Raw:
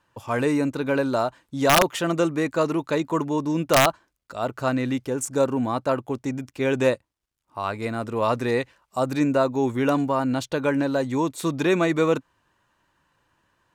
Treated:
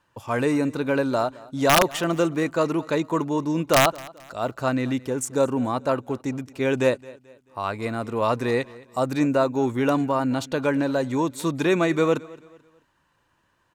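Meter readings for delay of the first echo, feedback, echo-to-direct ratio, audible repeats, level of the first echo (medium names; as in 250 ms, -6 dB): 218 ms, 38%, -21.0 dB, 2, -21.5 dB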